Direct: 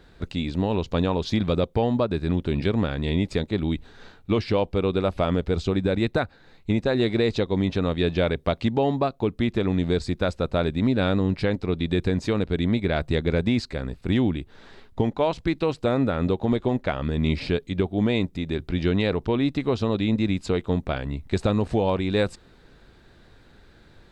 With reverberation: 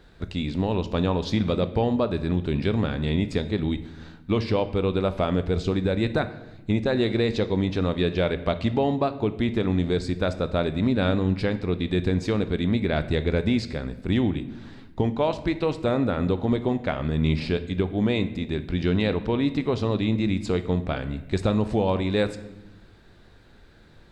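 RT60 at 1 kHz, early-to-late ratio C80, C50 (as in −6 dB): 0.85 s, 16.0 dB, 13.5 dB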